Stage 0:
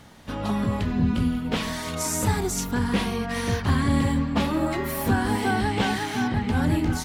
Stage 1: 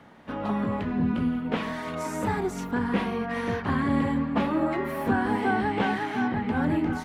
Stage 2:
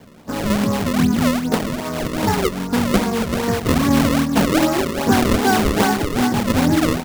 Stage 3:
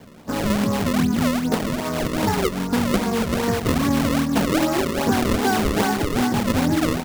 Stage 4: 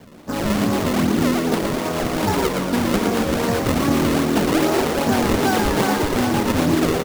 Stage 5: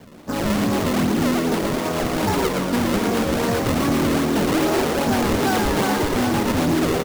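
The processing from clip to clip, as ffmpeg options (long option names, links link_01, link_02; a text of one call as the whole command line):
ffmpeg -i in.wav -filter_complex "[0:a]acrossover=split=160 2600:gain=0.224 1 0.141[link_01][link_02][link_03];[link_01][link_02][link_03]amix=inputs=3:normalize=0" out.wav
ffmpeg -i in.wav -af "adynamicsmooth=sensitivity=3.5:basefreq=810,acrusher=samples=32:mix=1:aa=0.000001:lfo=1:lforange=51.2:lforate=2.5,volume=9dB" out.wav
ffmpeg -i in.wav -af "acompressor=threshold=-17dB:ratio=3" out.wav
ffmpeg -i in.wav -filter_complex "[0:a]asplit=8[link_01][link_02][link_03][link_04][link_05][link_06][link_07][link_08];[link_02]adelay=115,afreqshift=83,volume=-5dB[link_09];[link_03]adelay=230,afreqshift=166,volume=-10.2dB[link_10];[link_04]adelay=345,afreqshift=249,volume=-15.4dB[link_11];[link_05]adelay=460,afreqshift=332,volume=-20.6dB[link_12];[link_06]adelay=575,afreqshift=415,volume=-25.8dB[link_13];[link_07]adelay=690,afreqshift=498,volume=-31dB[link_14];[link_08]adelay=805,afreqshift=581,volume=-36.2dB[link_15];[link_01][link_09][link_10][link_11][link_12][link_13][link_14][link_15]amix=inputs=8:normalize=0" out.wav
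ffmpeg -i in.wav -af "asoftclip=type=hard:threshold=-15dB" out.wav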